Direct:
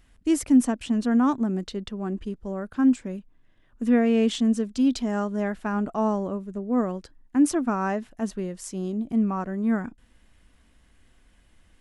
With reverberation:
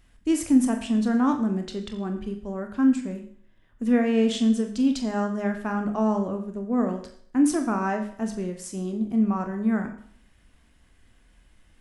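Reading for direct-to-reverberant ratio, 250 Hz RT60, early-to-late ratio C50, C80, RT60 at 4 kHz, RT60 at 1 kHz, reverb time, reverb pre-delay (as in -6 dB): 4.5 dB, 0.60 s, 9.5 dB, 11.5 dB, 0.55 s, 0.55 s, 0.55 s, 24 ms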